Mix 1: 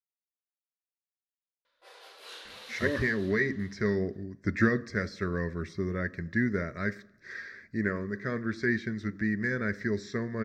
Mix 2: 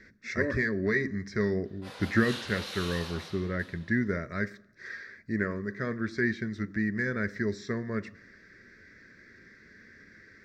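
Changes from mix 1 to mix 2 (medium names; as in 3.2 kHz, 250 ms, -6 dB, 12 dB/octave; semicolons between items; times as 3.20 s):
speech: entry -2.45 s; background +7.0 dB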